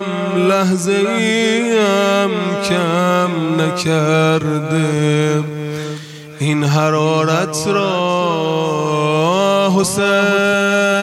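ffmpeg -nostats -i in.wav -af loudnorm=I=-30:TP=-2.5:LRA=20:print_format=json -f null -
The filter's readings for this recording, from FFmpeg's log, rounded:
"input_i" : "-14.9",
"input_tp" : "-1.2",
"input_lra" : "2.0",
"input_thresh" : "-25.0",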